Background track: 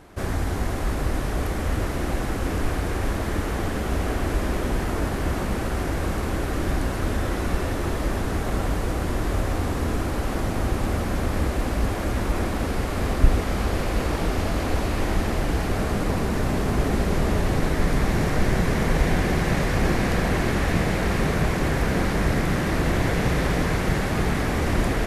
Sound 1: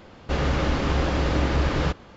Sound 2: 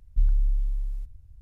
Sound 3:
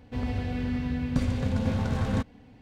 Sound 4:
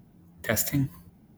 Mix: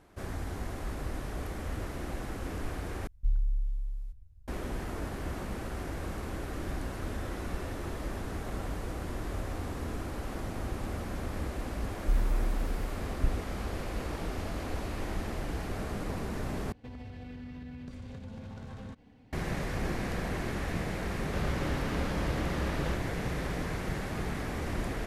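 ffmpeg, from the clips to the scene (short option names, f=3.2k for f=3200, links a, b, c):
-filter_complex "[2:a]asplit=2[a][b];[0:a]volume=-11.5dB[c];[b]crystalizer=i=5.5:c=0[d];[3:a]acompressor=threshold=-34dB:ratio=6:attack=3.2:release=140:knee=1:detection=peak[e];[c]asplit=3[f][g][h];[f]atrim=end=3.074[i];[a]atrim=end=1.41,asetpts=PTS-STARTPTS,volume=-6.5dB[j];[g]atrim=start=4.476:end=16.724[k];[e]atrim=end=2.61,asetpts=PTS-STARTPTS,volume=-6dB[l];[h]atrim=start=19.326[m];[d]atrim=end=1.41,asetpts=PTS-STARTPTS,volume=-6dB,afade=t=in:d=0.004:c=hsin,afade=t=out:st=1.406:d=0.004:c=hsin,adelay=11910[n];[1:a]atrim=end=2.16,asetpts=PTS-STARTPTS,volume=-12dB,afade=t=in:d=0.004:c=hsin,afade=t=out:st=2.156:d=0.004:c=hsin,adelay=21030[o];[i][j]acrossfade=d=0.004:c1=hsin:c2=hsin[p];[p][k]acrossfade=d=0.004:c1=hsin:c2=hsin[q];[q][l]acrossfade=d=0.004:c1=hsin:c2=hsin[r];[r][m]acrossfade=d=0.004:c1=hsin:c2=hsin[s];[s][n][o]amix=inputs=3:normalize=0"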